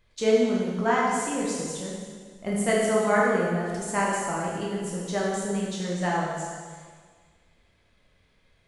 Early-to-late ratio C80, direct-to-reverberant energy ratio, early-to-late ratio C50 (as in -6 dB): 1.0 dB, -5.5 dB, -1.0 dB